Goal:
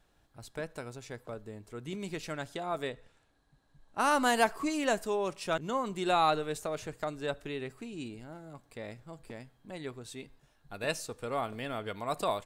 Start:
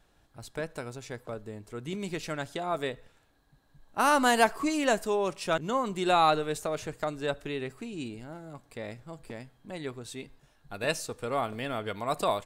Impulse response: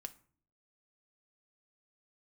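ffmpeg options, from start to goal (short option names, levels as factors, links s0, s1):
-filter_complex "[0:a]asettb=1/sr,asplit=3[s0][s1][s2];[s0]atrim=end=2.884[s3];[s1]atrim=start=2.88:end=4.11,asetpts=PTS-STARTPTS,afade=t=in:d=0.004:c=qsin,afade=t=out:st=1.226:d=0.004:c=qsin,lowpass=f=11000:w=0.5412,lowpass=f=11000:w=1.3066[s4];[s2]atrim=start=4.106[s5];[s3][s4]acrossfade=d=0.004:c1=hsin:c2=qsin[s6];[s6][s5]acrossfade=d=0.004:c1=qsin:c2=hsin,volume=0.668"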